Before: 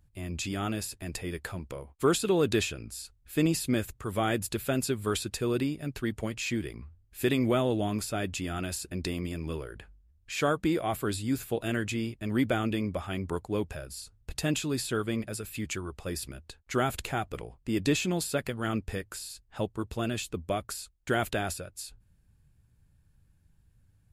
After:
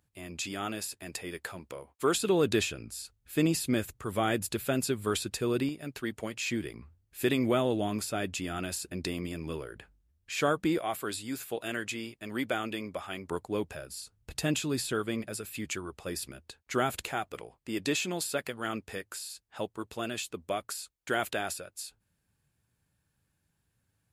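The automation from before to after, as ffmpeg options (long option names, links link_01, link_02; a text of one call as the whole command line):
ffmpeg -i in.wav -af "asetnsamples=nb_out_samples=441:pad=0,asendcmd='2.15 highpass f 110;5.69 highpass f 320;6.47 highpass f 150;10.78 highpass f 560;13.3 highpass f 210;14.17 highpass f 97;14.93 highpass f 200;17.08 highpass f 430',highpass=frequency=380:poles=1" out.wav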